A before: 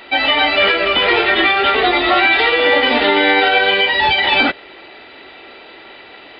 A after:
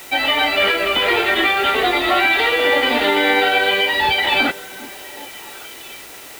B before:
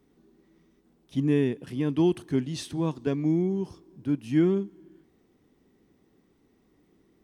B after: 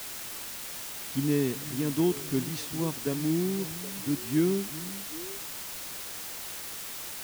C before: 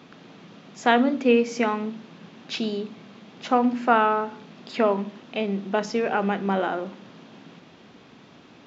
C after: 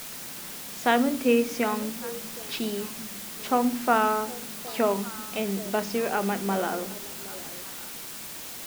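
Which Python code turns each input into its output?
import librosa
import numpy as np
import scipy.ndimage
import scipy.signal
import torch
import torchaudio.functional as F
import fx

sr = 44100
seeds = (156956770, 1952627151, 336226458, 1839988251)

y = fx.echo_stepped(x, sr, ms=384, hz=180.0, octaves=1.4, feedback_pct=70, wet_db=-11.5)
y = fx.quant_dither(y, sr, seeds[0], bits=6, dither='triangular')
y = y * 10.0 ** (-3.0 / 20.0)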